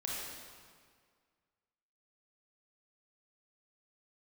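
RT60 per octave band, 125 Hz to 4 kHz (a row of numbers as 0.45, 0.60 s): 1.9, 1.9, 1.9, 1.9, 1.7, 1.5 s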